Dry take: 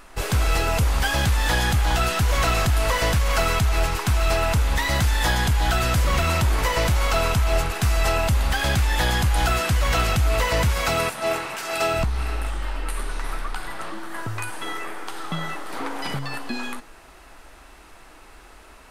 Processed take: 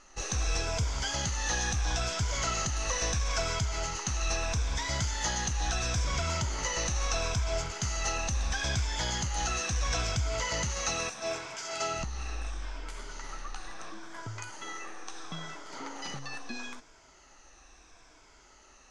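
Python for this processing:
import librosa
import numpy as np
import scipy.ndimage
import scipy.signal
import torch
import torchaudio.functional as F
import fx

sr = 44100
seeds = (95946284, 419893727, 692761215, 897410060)

y = fx.spec_ripple(x, sr, per_octave=1.7, drift_hz=-0.75, depth_db=8)
y = fx.ladder_lowpass(y, sr, hz=6600.0, resonance_pct=75)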